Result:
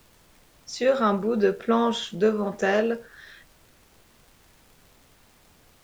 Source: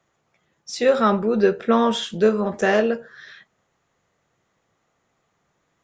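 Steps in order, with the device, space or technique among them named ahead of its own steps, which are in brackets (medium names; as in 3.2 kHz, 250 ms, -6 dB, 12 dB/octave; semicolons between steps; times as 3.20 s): vinyl LP (crackle; pink noise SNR 30 dB); trim -4 dB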